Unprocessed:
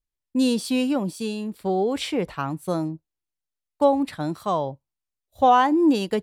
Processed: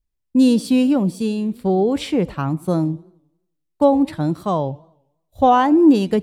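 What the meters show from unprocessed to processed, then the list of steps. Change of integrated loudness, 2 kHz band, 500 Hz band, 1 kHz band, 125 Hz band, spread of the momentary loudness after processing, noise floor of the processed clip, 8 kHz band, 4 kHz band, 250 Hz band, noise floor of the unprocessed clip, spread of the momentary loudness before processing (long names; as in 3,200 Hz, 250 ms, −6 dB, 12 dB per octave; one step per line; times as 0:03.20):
+5.5 dB, +0.5 dB, +4.5 dB, +2.0 dB, +9.0 dB, 10 LU, −74 dBFS, can't be measured, 0.0 dB, +7.0 dB, below −85 dBFS, 12 LU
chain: low-shelf EQ 380 Hz +11 dB
feedback echo with a swinging delay time 90 ms, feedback 48%, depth 219 cents, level −23 dB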